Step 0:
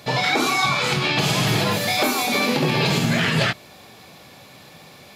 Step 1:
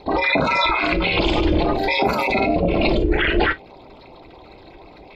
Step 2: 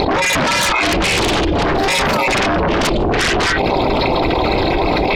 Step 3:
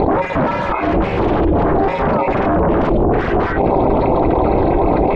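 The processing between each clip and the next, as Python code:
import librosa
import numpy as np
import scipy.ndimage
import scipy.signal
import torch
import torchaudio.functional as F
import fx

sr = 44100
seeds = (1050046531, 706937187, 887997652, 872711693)

y1 = fx.envelope_sharpen(x, sr, power=3.0)
y1 = fx.rev_gated(y1, sr, seeds[0], gate_ms=80, shape='falling', drr_db=9.0)
y1 = y1 * np.sin(2.0 * np.pi * 190.0 * np.arange(len(y1)) / sr)
y1 = y1 * librosa.db_to_amplitude(4.5)
y2 = fx.volume_shaper(y1, sr, bpm=83, per_beat=1, depth_db=-10, release_ms=102.0, shape='slow start')
y2 = fx.fold_sine(y2, sr, drive_db=13, ceiling_db=-4.5)
y2 = fx.env_flatten(y2, sr, amount_pct=100)
y2 = y2 * librosa.db_to_amplitude(-8.0)
y3 = scipy.signal.sosfilt(scipy.signal.butter(2, 1000.0, 'lowpass', fs=sr, output='sos'), y2)
y3 = y3 * librosa.db_to_amplitude(2.5)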